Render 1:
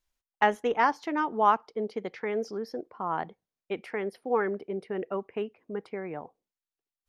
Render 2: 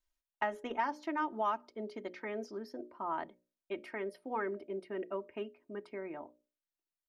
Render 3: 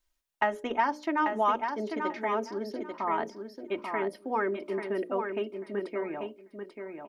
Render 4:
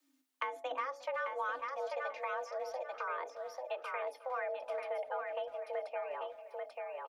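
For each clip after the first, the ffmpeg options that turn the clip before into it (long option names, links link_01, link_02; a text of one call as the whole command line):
ffmpeg -i in.wav -filter_complex "[0:a]bandreject=frequency=60:width_type=h:width=6,bandreject=frequency=120:width_type=h:width=6,bandreject=frequency=180:width_type=h:width=6,bandreject=frequency=240:width_type=h:width=6,bandreject=frequency=300:width_type=h:width=6,bandreject=frequency=360:width_type=h:width=6,bandreject=frequency=420:width_type=h:width=6,bandreject=frequency=480:width_type=h:width=6,bandreject=frequency=540:width_type=h:width=6,bandreject=frequency=600:width_type=h:width=6,aecho=1:1:3.2:0.67,acrossover=split=1300|2700[link_01][link_02][link_03];[link_01]acompressor=threshold=-25dB:ratio=4[link_04];[link_02]acompressor=threshold=-33dB:ratio=4[link_05];[link_03]acompressor=threshold=-49dB:ratio=4[link_06];[link_04][link_05][link_06]amix=inputs=3:normalize=0,volume=-7dB" out.wav
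ffmpeg -i in.wav -af "aecho=1:1:840|1680|2520:0.501|0.0902|0.0162,volume=7dB" out.wav
ffmpeg -i in.wav -filter_complex "[0:a]acrossover=split=170[link_01][link_02];[link_02]acompressor=threshold=-45dB:ratio=2.5[link_03];[link_01][link_03]amix=inputs=2:normalize=0,afreqshift=260,asplit=2[link_04][link_05];[link_05]adelay=360,highpass=300,lowpass=3400,asoftclip=type=hard:threshold=-37dB,volume=-17dB[link_06];[link_04][link_06]amix=inputs=2:normalize=0,volume=2.5dB" out.wav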